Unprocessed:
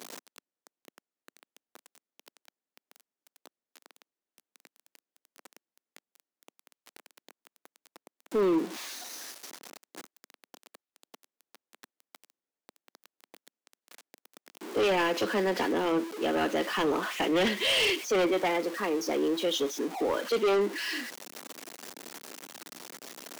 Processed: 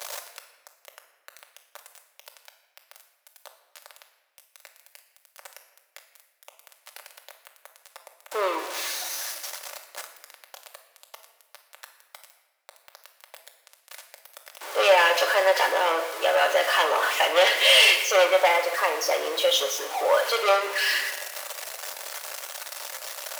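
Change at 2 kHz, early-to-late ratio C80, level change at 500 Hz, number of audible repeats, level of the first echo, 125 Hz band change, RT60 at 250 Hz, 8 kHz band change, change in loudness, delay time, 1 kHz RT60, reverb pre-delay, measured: +10.5 dB, 11.0 dB, +5.0 dB, no echo audible, no echo audible, below −35 dB, 2.3 s, +10.0 dB, +6.0 dB, no echo audible, 1.2 s, 3 ms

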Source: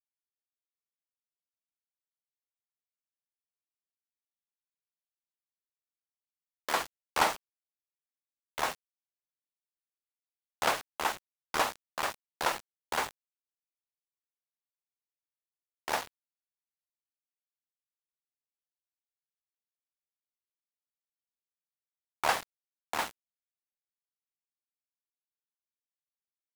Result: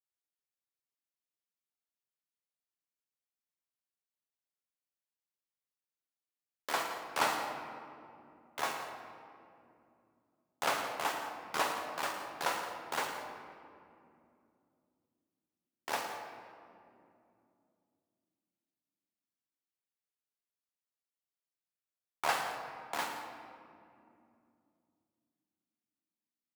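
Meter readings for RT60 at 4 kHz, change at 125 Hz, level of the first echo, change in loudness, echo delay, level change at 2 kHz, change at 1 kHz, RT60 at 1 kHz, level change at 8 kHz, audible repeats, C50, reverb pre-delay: 1.3 s, −3.5 dB, −12.5 dB, −3.5 dB, 110 ms, −2.5 dB, −2.0 dB, 2.3 s, −3.0 dB, 2, 4.0 dB, 7 ms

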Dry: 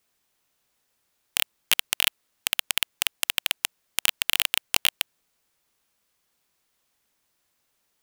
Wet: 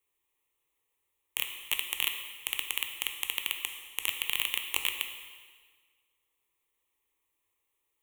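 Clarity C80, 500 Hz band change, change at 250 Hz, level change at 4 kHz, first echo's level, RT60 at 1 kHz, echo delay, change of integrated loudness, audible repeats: 8.5 dB, −8.0 dB, −9.5 dB, −7.5 dB, no echo audible, 1.6 s, no echo audible, −6.5 dB, no echo audible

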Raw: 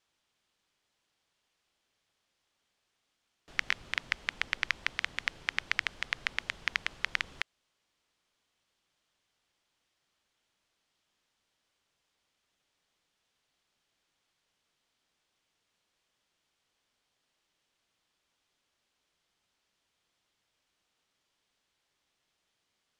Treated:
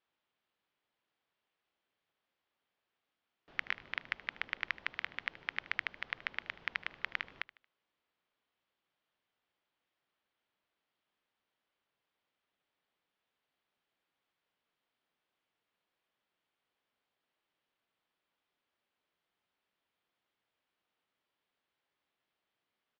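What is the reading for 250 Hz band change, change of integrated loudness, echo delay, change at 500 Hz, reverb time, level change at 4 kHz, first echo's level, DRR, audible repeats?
−5.5 dB, −6.0 dB, 76 ms, −4.0 dB, no reverb audible, −8.5 dB, −19.0 dB, no reverb audible, 2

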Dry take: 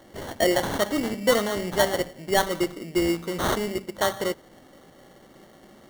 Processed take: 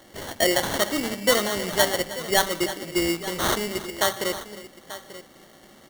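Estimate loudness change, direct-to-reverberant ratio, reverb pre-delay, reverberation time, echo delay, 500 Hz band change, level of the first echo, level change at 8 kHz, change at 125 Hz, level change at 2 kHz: +1.5 dB, no reverb audible, no reverb audible, no reverb audible, 314 ms, −1.0 dB, −16.0 dB, +6.0 dB, −2.0 dB, +3.0 dB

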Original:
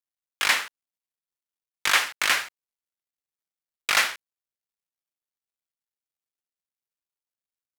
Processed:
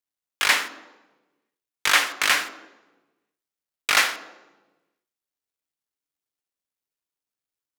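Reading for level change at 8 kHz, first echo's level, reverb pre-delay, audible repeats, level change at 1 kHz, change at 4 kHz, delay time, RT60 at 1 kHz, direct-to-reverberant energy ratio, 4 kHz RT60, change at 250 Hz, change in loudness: +2.0 dB, no echo audible, 3 ms, no echo audible, +2.5 dB, +2.0 dB, no echo audible, 1.1 s, 9.5 dB, 0.85 s, +5.5 dB, +2.0 dB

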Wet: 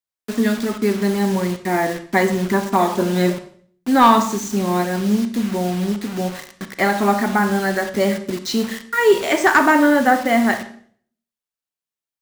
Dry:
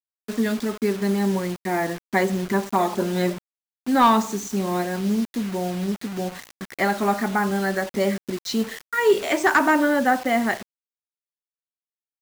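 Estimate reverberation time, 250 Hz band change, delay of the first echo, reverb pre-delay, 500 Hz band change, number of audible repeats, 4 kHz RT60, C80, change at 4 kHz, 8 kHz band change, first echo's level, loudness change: 0.55 s, +4.5 dB, no echo audible, 28 ms, +4.0 dB, no echo audible, 0.50 s, 15.5 dB, +4.5 dB, +4.5 dB, no echo audible, +4.5 dB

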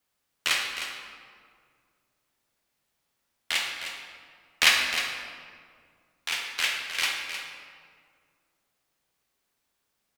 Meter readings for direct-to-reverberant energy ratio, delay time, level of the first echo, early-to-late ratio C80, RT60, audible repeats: 0.0 dB, 309 ms, −10.0 dB, 3.0 dB, 2.0 s, 1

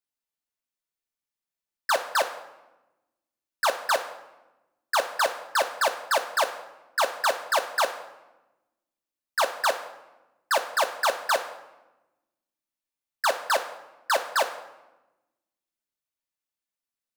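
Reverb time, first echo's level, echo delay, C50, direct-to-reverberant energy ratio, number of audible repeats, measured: 1.0 s, no echo audible, no echo audible, 11.0 dB, 4.0 dB, no echo audible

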